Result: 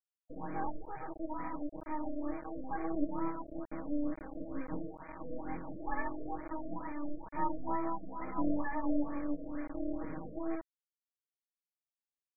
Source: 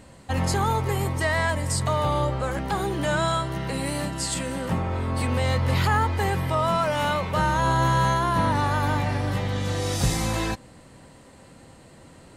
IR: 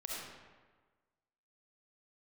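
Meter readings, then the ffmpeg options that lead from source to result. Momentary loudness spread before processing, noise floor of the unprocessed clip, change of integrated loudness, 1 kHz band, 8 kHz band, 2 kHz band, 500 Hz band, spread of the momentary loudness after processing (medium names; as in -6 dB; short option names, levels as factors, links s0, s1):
6 LU, -50 dBFS, -15.0 dB, -15.5 dB, under -40 dB, -20.0 dB, -15.0 dB, 9 LU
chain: -filter_complex "[0:a]asplit=3[s0][s1][s2];[s0]bandpass=f=300:t=q:w=8,volume=1[s3];[s1]bandpass=f=870:t=q:w=8,volume=0.501[s4];[s2]bandpass=f=2240:t=q:w=8,volume=0.355[s5];[s3][s4][s5]amix=inputs=3:normalize=0,equalizer=f=130:w=2.2:g=-7.5,asplit=2[s6][s7];[1:a]atrim=start_sample=2205[s8];[s7][s8]afir=irnorm=-1:irlink=0,volume=0.316[s9];[s6][s9]amix=inputs=2:normalize=0,flanger=delay=19.5:depth=5.3:speed=0.49,equalizer=f=8300:w=0.5:g=-14,afftfilt=real='re*gte(hypot(re,im),0.02)':imag='im*gte(hypot(re,im),0.02)':win_size=1024:overlap=0.75,asplit=2[s10][s11];[s11]adelay=569,lowpass=f=3500:p=1,volume=0.0708,asplit=2[s12][s13];[s13]adelay=569,lowpass=f=3500:p=1,volume=0.15[s14];[s10][s12][s14]amix=inputs=3:normalize=0,acrusher=bits=5:dc=4:mix=0:aa=0.000001,adynamicsmooth=sensitivity=0.5:basefreq=6900,aecho=1:1:6.3:0.97,afftfilt=real='re*lt(b*sr/1024,660*pow(2500/660,0.5+0.5*sin(2*PI*2.2*pts/sr)))':imag='im*lt(b*sr/1024,660*pow(2500/660,0.5+0.5*sin(2*PI*2.2*pts/sr)))':win_size=1024:overlap=0.75,volume=1.5"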